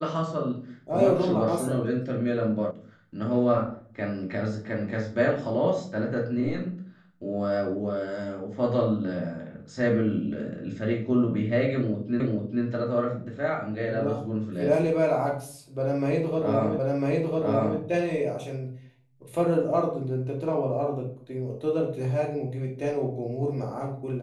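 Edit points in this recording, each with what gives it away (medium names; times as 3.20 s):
2.71 s: sound stops dead
12.20 s: repeat of the last 0.44 s
16.79 s: repeat of the last 1 s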